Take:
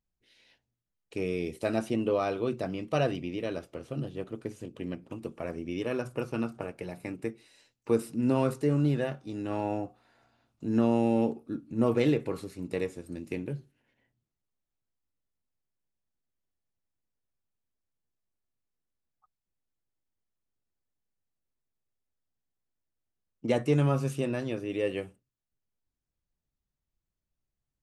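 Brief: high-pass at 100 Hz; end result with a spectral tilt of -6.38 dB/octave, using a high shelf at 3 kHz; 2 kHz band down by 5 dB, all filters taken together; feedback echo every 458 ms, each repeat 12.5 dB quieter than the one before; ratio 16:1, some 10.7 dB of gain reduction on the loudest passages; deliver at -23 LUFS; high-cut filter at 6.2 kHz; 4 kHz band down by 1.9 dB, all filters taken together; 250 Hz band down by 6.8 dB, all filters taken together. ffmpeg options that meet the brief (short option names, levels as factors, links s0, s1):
-af "highpass=100,lowpass=6200,equalizer=f=250:t=o:g=-8.5,equalizer=f=2000:t=o:g=-8.5,highshelf=f=3000:g=6.5,equalizer=f=4000:t=o:g=-3,acompressor=threshold=0.02:ratio=16,aecho=1:1:458|916|1374:0.237|0.0569|0.0137,volume=8.41"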